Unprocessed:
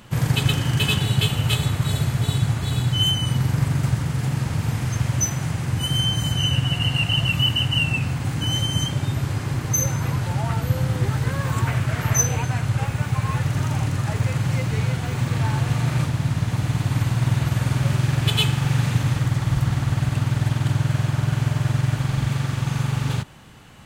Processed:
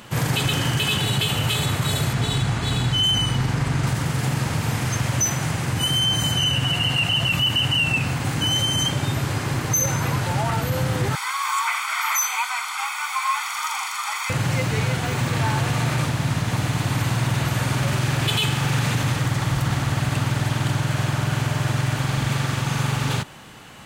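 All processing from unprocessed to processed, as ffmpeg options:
ffmpeg -i in.wav -filter_complex "[0:a]asettb=1/sr,asplit=3[link_01][link_02][link_03];[link_01]atrim=end=2.134[link_04];[link_02]atrim=start=2.13:end=3.87,asetpts=PTS-STARTPTS,afade=type=in:duration=0.004:curve=qsin,afade=type=out:start_time=1.736:duration=0.004:curve=qsin,bandreject=frequency=580:width=14,adynamicsmooth=sensitivity=7:basefreq=7300,aeval=exprs='val(0)+0.0316*(sin(2*PI*50*n/s)+sin(2*PI*2*50*n/s)/2+sin(2*PI*3*50*n/s)/3+sin(2*PI*4*50*n/s)/4+sin(2*PI*5*50*n/s)/5)':channel_layout=same[link_05];[link_03]atrim=start=3.866[link_06];[link_04][link_05]acrossfade=duration=0.004:curve1=hsin:curve2=qsin[link_07];[link_07][link_06]acrossfade=duration=0.004:curve1=qsin:curve2=hsin,asettb=1/sr,asplit=3[link_08][link_09][link_10];[link_08]atrim=end=11.154[link_11];[link_09]atrim=start=11.15:end=14.3,asetpts=PTS-STARTPTS,afade=type=in:duration=0.004:curve=qsin,afade=type=out:start_time=3.146:duration=0.004:curve=qsin,highpass=frequency=910:width=0.5412,highpass=frequency=910:width=1.3066,aecho=1:1:0.9:0.85,atrim=end_sample=138915[link_12];[link_10]atrim=start=14.296[link_13];[link_11][link_12]acrossfade=duration=0.004:curve1=hsin:curve2=qsin[link_14];[link_14][link_13]acrossfade=duration=0.004:curve1=qsin:curve2=hsin,lowshelf=frequency=160:gain=-11,acontrast=56,alimiter=limit=-13dB:level=0:latency=1:release=24" out.wav

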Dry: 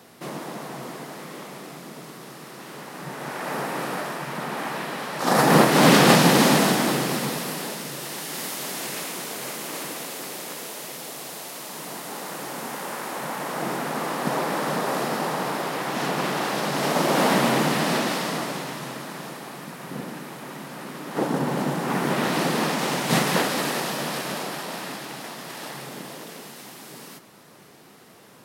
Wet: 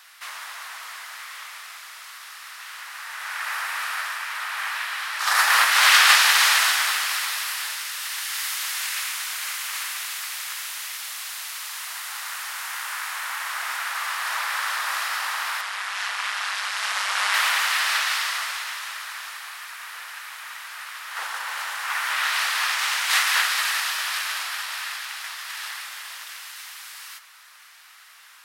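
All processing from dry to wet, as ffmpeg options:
ffmpeg -i in.wav -filter_complex "[0:a]asettb=1/sr,asplit=3[link_01][link_02][link_03];[link_01]atrim=end=15.614[link_04];[link_02]atrim=start=15.61:end=17.34,asetpts=PTS-STARTPTS,afade=type=in:duration=0.004:curve=qsin,afade=type=out:start_time=1.726:duration=0.004:curve=qsin,lowpass=frequency=11000:width=0.5412,lowpass=frequency=11000:width=1.3066,lowshelf=frequency=170:gain=12,tremolo=f=200:d=0.621[link_05];[link_03]atrim=start=17.336[link_06];[link_04][link_05]acrossfade=duration=0.004:curve1=hsin:curve2=qsin[link_07];[link_07][link_06]acrossfade=duration=0.004:curve1=qsin:curve2=hsin,highpass=frequency=1300:width=0.5412,highpass=frequency=1300:width=1.3066,highshelf=frequency=4600:gain=-5,volume=7.5dB" out.wav

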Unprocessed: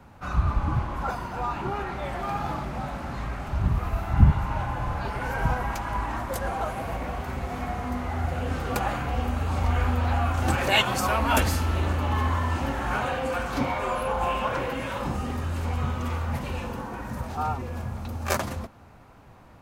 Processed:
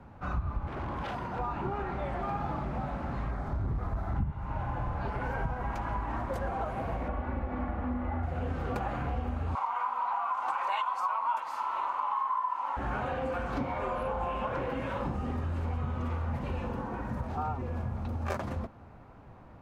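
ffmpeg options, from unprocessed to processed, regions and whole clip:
ffmpeg -i in.wav -filter_complex "[0:a]asettb=1/sr,asplit=3[link_01][link_02][link_03];[link_01]atrim=end=0.674[link_04];[link_02]atrim=start=0.67:end=1.39,asetpts=PTS-STARTPTS,afade=type=in:duration=0.004:curve=qsin,afade=type=out:start_time=0.716:duration=0.004:curve=qsin,highpass=71,aeval=exprs='0.0376*(abs(mod(val(0)/0.0376+3,4)-2)-1)':channel_layout=same[link_05];[link_03]atrim=start=1.386[link_06];[link_04][link_05]acrossfade=duration=0.004:curve1=hsin:curve2=qsin[link_07];[link_07][link_06]acrossfade=duration=0.004:curve1=qsin:curve2=hsin,asettb=1/sr,asplit=3[link_08][link_09][link_10];[link_08]atrim=end=3.314[link_11];[link_09]atrim=start=3.31:end=4.19,asetpts=PTS-STARTPTS,afade=type=in:duration=0.004:curve=qsin,afade=type=out:start_time=0.876:duration=0.004:curve=qsin,equalizer=frequency=2700:width_type=o:width=0.41:gain=-12,asplit=2[link_12][link_13];[link_13]adelay=20,volume=-12dB[link_14];[link_12][link_14]amix=inputs=2:normalize=0,atrim=end_sample=38808,asoftclip=type=hard:threshold=-22.5dB[link_15];[link_10]atrim=start=4.186[link_16];[link_11][link_15]acrossfade=duration=0.004:curve1=hsin:curve2=qsin[link_17];[link_17][link_16]acrossfade=duration=0.004:curve1=qsin:curve2=hsin,asettb=1/sr,asplit=3[link_18][link_19][link_20];[link_18]atrim=end=7.084[link_21];[link_19]atrim=start=7.08:end=8.23,asetpts=PTS-STARTPTS,afade=type=in:duration=0.004:curve=qsin,afade=type=out:start_time=1.146:duration=0.004:curve=qsin,lowpass=2400,aecho=1:1:3.5:0.6,atrim=end_sample=50715[link_22];[link_20]atrim=start=8.226[link_23];[link_21][link_22]acrossfade=duration=0.004:curve1=hsin:curve2=qsin[link_24];[link_24][link_23]acrossfade=duration=0.004:curve1=qsin:curve2=hsin,asettb=1/sr,asplit=3[link_25][link_26][link_27];[link_25]atrim=end=9.554[link_28];[link_26]atrim=start=9.55:end=12.77,asetpts=PTS-STARTPTS,afade=type=in:duration=0.004:curve=qsin,afade=type=out:start_time=3.216:duration=0.004:curve=qsin,highpass=frequency=1000:width_type=q:width=9.5,bandreject=frequency=1700:width=7.7[link_29];[link_27]atrim=start=12.766[link_30];[link_28][link_29]acrossfade=duration=0.004:curve1=hsin:curve2=qsin[link_31];[link_31][link_30]acrossfade=duration=0.004:curve1=qsin:curve2=hsin,lowpass=frequency=1300:poles=1,acompressor=threshold=-29dB:ratio=6" out.wav

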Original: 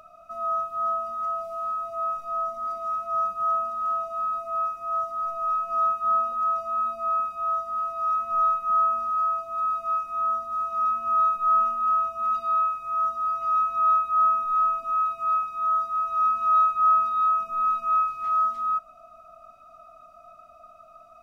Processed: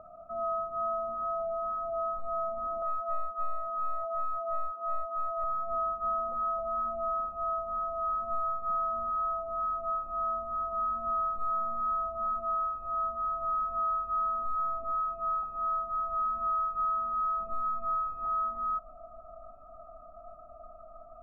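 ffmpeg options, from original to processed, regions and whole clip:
ffmpeg -i in.wav -filter_complex "[0:a]asettb=1/sr,asplit=3[link_01][link_02][link_03];[link_01]atrim=end=2.824[link_04];[link_02]atrim=start=2.82:end=5.44,asetpts=PTS-STARTPTS,afade=type=in:duration=0.004:curve=qsin,afade=type=out:start_time=2.616:duration=0.004:curve=qsin,highpass=380,aeval=exprs='clip(val(0),-1,0.0398)':channel_layout=same,equalizer=frequency=1500:width_type=o:width=0.57:gain=5.5[link_05];[link_03]atrim=start=5.436[link_06];[link_04][link_05]acrossfade=duration=0.004:curve1=hsin:curve2=qsin[link_07];[link_07][link_06]acrossfade=duration=0.004:curve1=qsin:curve2=hsin,lowpass=frequency=1000:width=0.5412,lowpass=frequency=1000:width=1.3066,asubboost=boost=4.5:cutoff=52,acompressor=threshold=-32dB:ratio=6,volume=4dB" out.wav

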